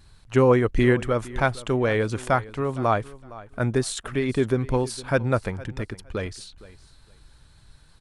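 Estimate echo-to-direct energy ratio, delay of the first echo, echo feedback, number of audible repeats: -19.0 dB, 462 ms, 20%, 2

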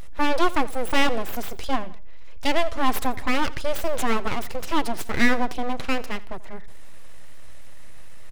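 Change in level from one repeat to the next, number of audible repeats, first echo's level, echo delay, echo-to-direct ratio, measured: -5.5 dB, 2, -20.0 dB, 85 ms, -19.0 dB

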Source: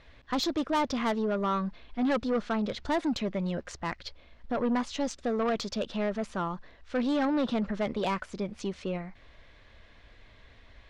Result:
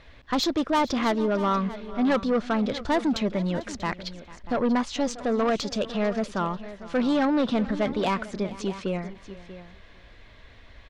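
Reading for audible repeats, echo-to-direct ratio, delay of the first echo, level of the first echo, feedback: 3, -13.5 dB, 447 ms, -19.0 dB, no regular repeats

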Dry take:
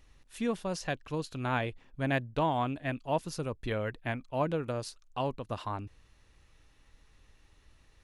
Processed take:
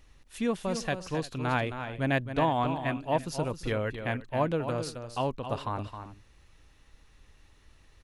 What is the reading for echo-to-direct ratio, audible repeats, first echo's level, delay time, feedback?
-8.5 dB, 2, -9.0 dB, 267 ms, no regular repeats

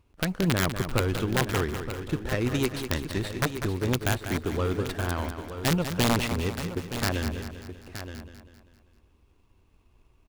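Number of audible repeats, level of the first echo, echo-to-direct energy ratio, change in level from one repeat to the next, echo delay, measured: 9, -9.0 dB, -5.5 dB, no regular repeats, 196 ms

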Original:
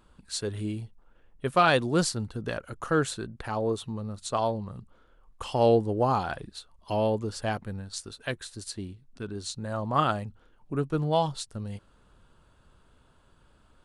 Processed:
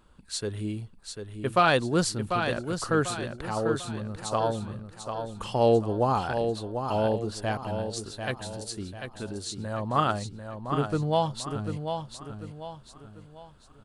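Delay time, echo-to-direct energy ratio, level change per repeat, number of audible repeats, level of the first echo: 744 ms, -6.5 dB, -8.0 dB, 4, -7.0 dB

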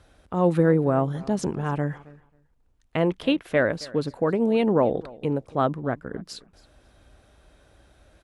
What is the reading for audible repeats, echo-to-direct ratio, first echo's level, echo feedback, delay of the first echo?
1, -21.5 dB, -21.5 dB, no regular repeats, 271 ms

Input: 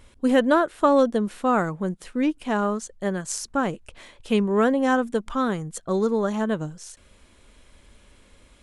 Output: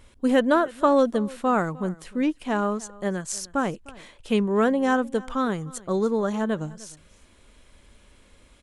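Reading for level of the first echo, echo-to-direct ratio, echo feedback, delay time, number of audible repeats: -21.5 dB, -21.5 dB, no regular repeats, 304 ms, 1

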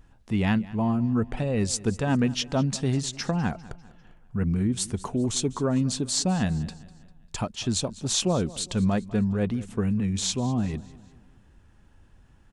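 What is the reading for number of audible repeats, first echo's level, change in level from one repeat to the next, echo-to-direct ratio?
3, -19.5 dB, -7.0 dB, -18.5 dB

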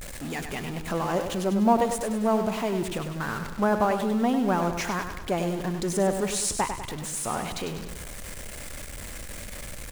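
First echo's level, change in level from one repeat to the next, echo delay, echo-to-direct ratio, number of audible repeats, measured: -8.0 dB, -5.5 dB, 99 ms, -6.5 dB, 4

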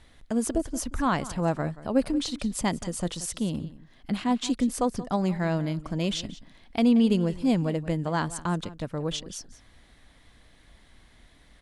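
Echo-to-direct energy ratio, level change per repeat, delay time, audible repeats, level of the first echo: -17.0 dB, no regular repeats, 180 ms, 1, -17.0 dB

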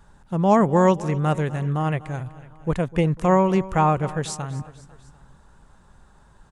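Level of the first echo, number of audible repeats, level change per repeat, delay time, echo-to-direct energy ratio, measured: -18.0 dB, 3, -4.5 dB, 249 ms, -16.5 dB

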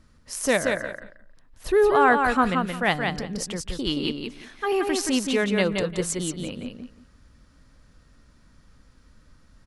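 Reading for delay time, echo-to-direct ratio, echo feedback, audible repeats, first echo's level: 175 ms, -4.5 dB, 19%, 3, -4.5 dB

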